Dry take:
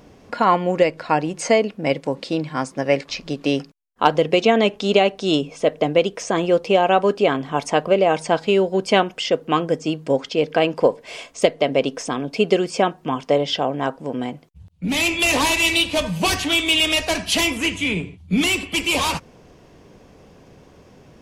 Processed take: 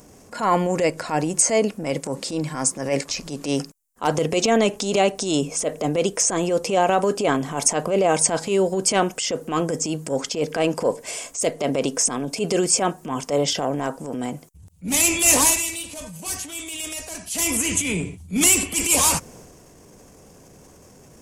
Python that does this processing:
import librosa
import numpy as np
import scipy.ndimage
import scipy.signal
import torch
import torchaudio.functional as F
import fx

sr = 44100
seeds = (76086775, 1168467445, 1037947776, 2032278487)

y = fx.edit(x, sr, fx.fade_down_up(start_s=15.36, length_s=2.19, db=-13.0, fade_s=0.27), tone=tone)
y = fx.transient(y, sr, attack_db=-9, sustain_db=5)
y = fx.high_shelf_res(y, sr, hz=5400.0, db=13.5, q=1.5)
y = F.gain(torch.from_numpy(y), -1.0).numpy()